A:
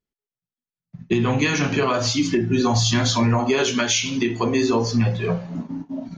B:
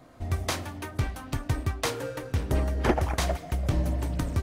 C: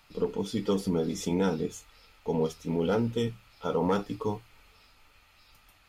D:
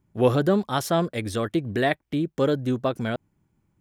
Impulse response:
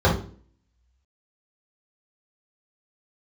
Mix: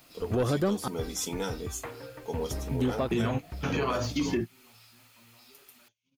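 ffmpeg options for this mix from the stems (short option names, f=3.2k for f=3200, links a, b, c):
-filter_complex "[0:a]deesser=0.65,agate=range=-16dB:threshold=-25dB:ratio=16:detection=peak,adelay=2000,volume=-2dB[a];[1:a]lowpass=f=2.4k:w=0.5412,lowpass=f=2.4k:w=1.3066,volume=-10dB[b];[2:a]highpass=f=450:p=1,crystalizer=i=2.5:c=0,acrusher=bits=9:mix=0:aa=0.000001,volume=-2.5dB,asplit=2[c][d];[3:a]asoftclip=type=tanh:threshold=-14dB,adelay=150,volume=1.5dB,asplit=3[e][f][g];[e]atrim=end=0.88,asetpts=PTS-STARTPTS,afade=t=out:st=0.876:d=0.004:c=hsin[h];[f]atrim=start=0.88:end=2.71,asetpts=PTS-STARTPTS,volume=0[i];[g]atrim=start=2.71,asetpts=PTS-STARTPTS,afade=t=in:d=0.004:c=hsin[j];[h][i][j]concat=n=3:v=0:a=1[k];[d]apad=whole_len=360303[l];[a][l]sidechaingate=range=-41dB:threshold=-47dB:ratio=16:detection=peak[m];[m][b][c][k]amix=inputs=4:normalize=0,alimiter=limit=-19.5dB:level=0:latency=1:release=293"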